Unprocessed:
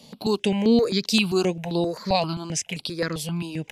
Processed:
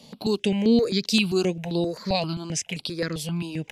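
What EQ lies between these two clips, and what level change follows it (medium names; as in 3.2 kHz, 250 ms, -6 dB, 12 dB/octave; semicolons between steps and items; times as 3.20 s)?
dynamic bell 970 Hz, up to -7 dB, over -40 dBFS, Q 1.2; treble shelf 9.9 kHz -4.5 dB; 0.0 dB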